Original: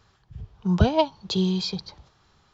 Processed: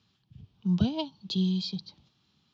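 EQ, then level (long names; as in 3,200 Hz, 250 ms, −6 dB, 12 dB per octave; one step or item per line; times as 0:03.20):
flat-topped bell 880 Hz −15.5 dB 2.8 octaves
dynamic equaliser 2,300 Hz, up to −6 dB, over −51 dBFS, Q 2.2
band-pass filter 180–3,700 Hz
0.0 dB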